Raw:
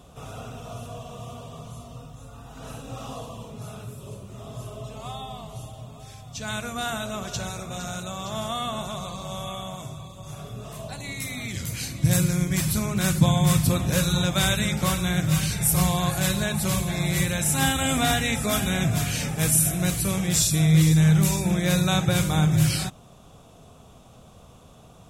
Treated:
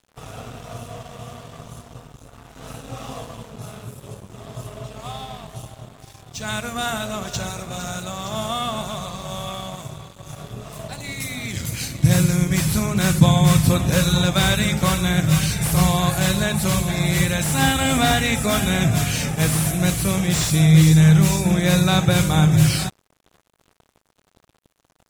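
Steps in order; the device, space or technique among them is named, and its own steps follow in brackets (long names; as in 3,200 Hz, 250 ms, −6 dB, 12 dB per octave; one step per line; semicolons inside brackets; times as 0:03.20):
early transistor amplifier (dead-zone distortion −44 dBFS; slew-rate limiting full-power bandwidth 250 Hz)
level +5.5 dB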